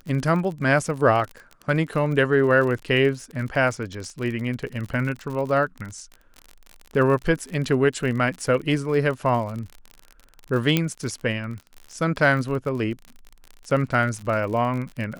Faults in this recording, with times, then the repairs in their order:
surface crackle 45 per second −30 dBFS
0:10.77: click −6 dBFS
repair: click removal

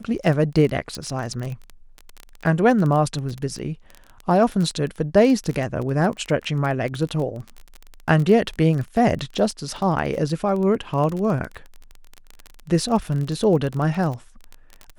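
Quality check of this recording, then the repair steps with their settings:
surface crackle 20 per second −25 dBFS
0:00.95: click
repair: click removal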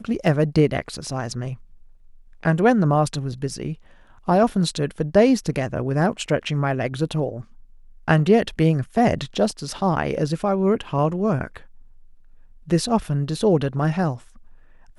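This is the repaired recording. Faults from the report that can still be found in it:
0:00.95: click

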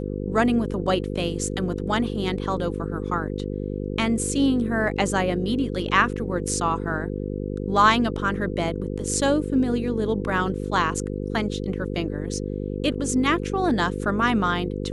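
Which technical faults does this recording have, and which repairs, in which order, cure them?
mains buzz 50 Hz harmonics 10 −29 dBFS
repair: hum removal 50 Hz, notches 10

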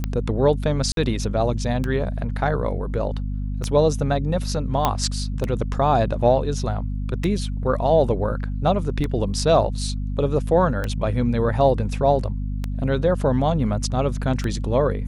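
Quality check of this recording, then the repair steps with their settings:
mains hum 50 Hz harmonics 5 −26 dBFS
scratch tick 33 1/3 rpm −12 dBFS
0:00.92–0:00.97: drop-out 52 ms
0:04.85: click −5 dBFS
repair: click removal
hum removal 50 Hz, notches 5
repair the gap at 0:00.92, 52 ms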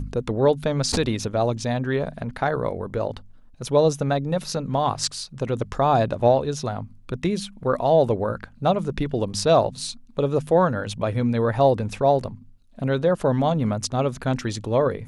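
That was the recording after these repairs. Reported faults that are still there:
none of them is left

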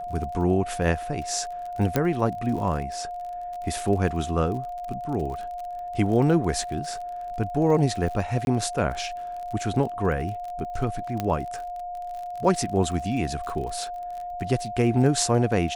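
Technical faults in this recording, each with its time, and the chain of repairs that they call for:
surface crackle 39 per second −33 dBFS
whistle 710 Hz −31 dBFS
0:01.96: click −8 dBFS
0:08.45–0:08.47: drop-out 21 ms
0:11.20: click −13 dBFS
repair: click removal
notch filter 710 Hz, Q 30
repair the gap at 0:08.45, 21 ms

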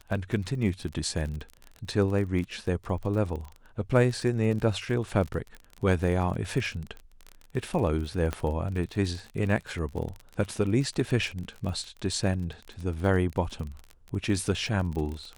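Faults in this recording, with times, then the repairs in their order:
surface crackle 35 per second −33 dBFS
0:08.33: click −16 dBFS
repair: click removal

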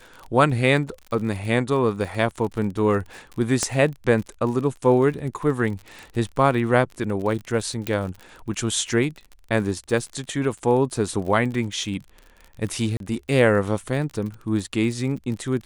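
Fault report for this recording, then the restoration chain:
surface crackle 40 per second −31 dBFS
0:03.63: click −8 dBFS
0:07.87: click
0:12.97–0:13.00: drop-out 32 ms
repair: click removal
repair the gap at 0:12.97, 32 ms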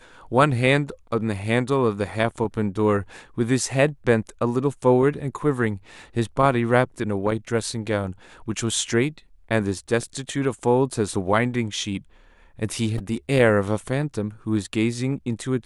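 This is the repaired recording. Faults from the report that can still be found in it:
none of them is left

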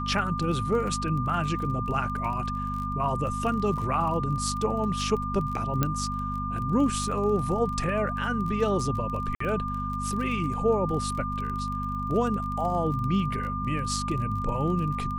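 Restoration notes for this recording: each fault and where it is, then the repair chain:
surface crackle 25 per second −33 dBFS
mains hum 50 Hz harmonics 5 −33 dBFS
whistle 1,200 Hz −31 dBFS
0:05.83: click −10 dBFS
0:09.35–0:09.40: drop-out 54 ms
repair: click removal
hum removal 50 Hz, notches 5
notch filter 1,200 Hz, Q 30
repair the gap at 0:09.35, 54 ms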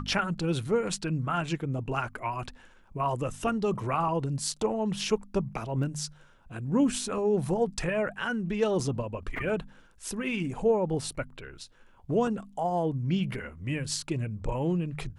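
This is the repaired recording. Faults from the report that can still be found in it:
0:05.83: click

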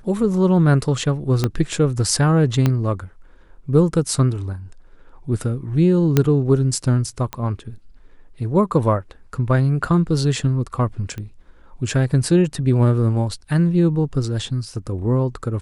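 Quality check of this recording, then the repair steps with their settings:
0:01.44: click −6 dBFS
0:02.66: click −6 dBFS
0:06.17: click −2 dBFS
0:07.33: click −11 dBFS
0:11.18: click −19 dBFS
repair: click removal

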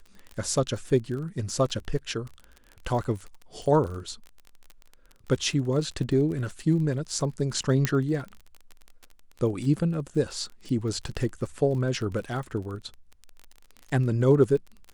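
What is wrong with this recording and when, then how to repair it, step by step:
surface crackle 32 per second −34 dBFS
0:07.85: click −9 dBFS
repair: click removal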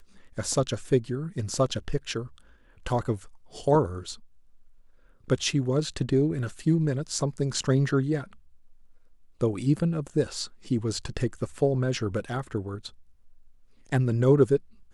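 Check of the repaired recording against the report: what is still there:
0:07.85: click

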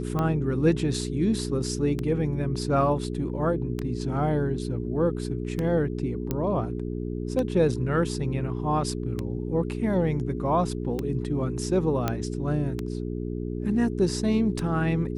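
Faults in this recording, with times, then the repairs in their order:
mains hum 60 Hz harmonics 7 −31 dBFS
scratch tick 33 1/3 rpm −16 dBFS
0:06.31: click −13 dBFS
0:12.08: click −11 dBFS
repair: click removal
hum removal 60 Hz, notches 7

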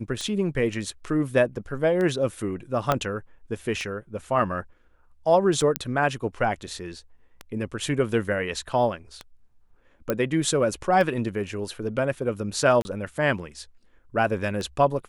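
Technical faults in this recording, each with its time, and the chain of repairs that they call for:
scratch tick 33 1/3 rpm −18 dBFS
0:02.92: click −8 dBFS
0:05.76: click −6 dBFS
0:10.10: click −11 dBFS
0:12.82–0:12.85: drop-out 30 ms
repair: click removal
repair the gap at 0:12.82, 30 ms

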